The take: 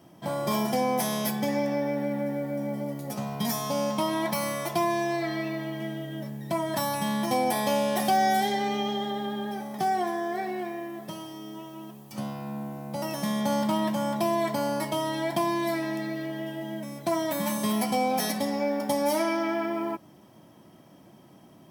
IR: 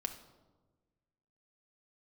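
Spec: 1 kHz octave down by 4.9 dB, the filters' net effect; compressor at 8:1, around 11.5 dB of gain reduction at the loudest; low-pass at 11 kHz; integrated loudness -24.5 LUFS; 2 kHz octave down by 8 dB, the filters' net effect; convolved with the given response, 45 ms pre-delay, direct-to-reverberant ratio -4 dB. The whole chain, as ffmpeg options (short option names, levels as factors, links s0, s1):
-filter_complex "[0:a]lowpass=11000,equalizer=f=1000:t=o:g=-5.5,equalizer=f=2000:t=o:g=-8,acompressor=threshold=0.0158:ratio=8,asplit=2[s0][s1];[1:a]atrim=start_sample=2205,adelay=45[s2];[s1][s2]afir=irnorm=-1:irlink=0,volume=1.58[s3];[s0][s3]amix=inputs=2:normalize=0,volume=3.55"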